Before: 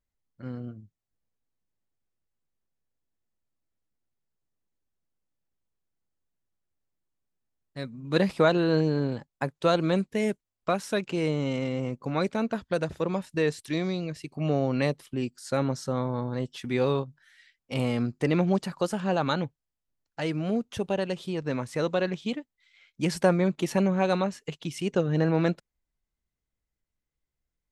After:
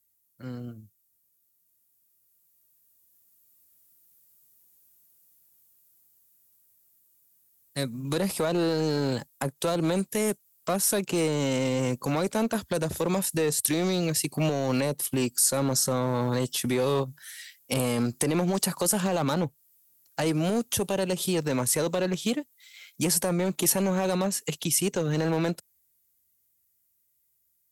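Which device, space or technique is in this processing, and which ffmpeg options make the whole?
FM broadcast chain: -filter_complex "[0:a]highpass=frequency=65:width=0.5412,highpass=frequency=65:width=1.3066,dynaudnorm=framelen=470:gausssize=13:maxgain=11dB,acrossover=split=370|1100[link_01][link_02][link_03];[link_01]acompressor=threshold=-25dB:ratio=4[link_04];[link_02]acompressor=threshold=-22dB:ratio=4[link_05];[link_03]acompressor=threshold=-38dB:ratio=4[link_06];[link_04][link_05][link_06]amix=inputs=3:normalize=0,aemphasis=mode=production:type=50fm,alimiter=limit=-16.5dB:level=0:latency=1:release=11,asoftclip=type=hard:threshold=-19.5dB,lowpass=frequency=15000:width=0.5412,lowpass=frequency=15000:width=1.3066,aemphasis=mode=production:type=50fm"

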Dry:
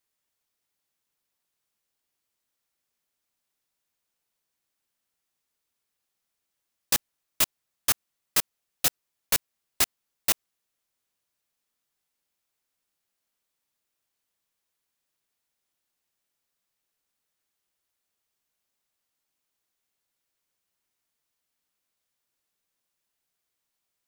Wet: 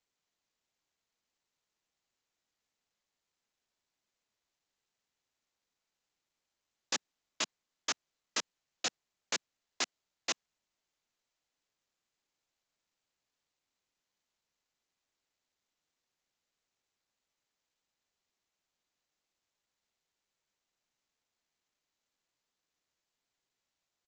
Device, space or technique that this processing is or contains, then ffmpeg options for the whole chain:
Bluetooth headset: -af "highpass=frequency=200:width=0.5412,highpass=frequency=200:width=1.3066,aresample=16000,aresample=44100,volume=-6dB" -ar 16000 -c:a sbc -b:a 64k

